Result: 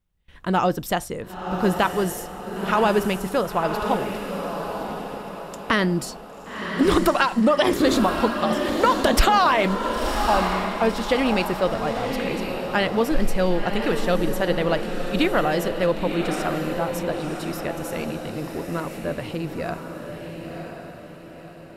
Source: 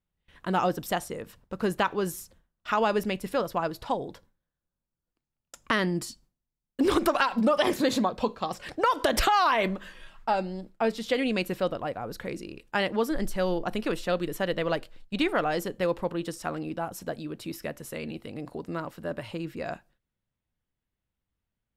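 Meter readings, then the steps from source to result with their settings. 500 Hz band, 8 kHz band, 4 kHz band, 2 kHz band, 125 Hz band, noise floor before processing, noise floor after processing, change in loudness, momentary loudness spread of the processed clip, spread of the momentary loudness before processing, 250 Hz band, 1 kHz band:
+6.0 dB, +6.0 dB, +6.0 dB, +6.0 dB, +8.0 dB, under -85 dBFS, -41 dBFS, +6.0 dB, 15 LU, 14 LU, +7.0 dB, +6.0 dB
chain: low shelf 95 Hz +8 dB; on a send: diffused feedback echo 1.029 s, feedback 45%, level -5.5 dB; on the sum: gain +4.5 dB

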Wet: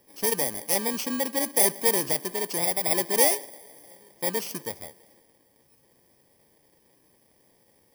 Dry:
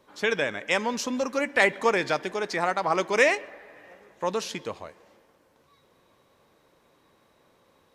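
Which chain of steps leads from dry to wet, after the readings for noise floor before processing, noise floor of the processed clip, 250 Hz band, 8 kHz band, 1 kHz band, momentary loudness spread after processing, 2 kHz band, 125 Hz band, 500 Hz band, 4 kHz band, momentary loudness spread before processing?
-64 dBFS, -64 dBFS, -0.5 dB, +13.0 dB, -4.5 dB, 14 LU, -8.5 dB, 0.0 dB, -3.0 dB, +2.0 dB, 12 LU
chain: FFT order left unsorted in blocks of 32 samples

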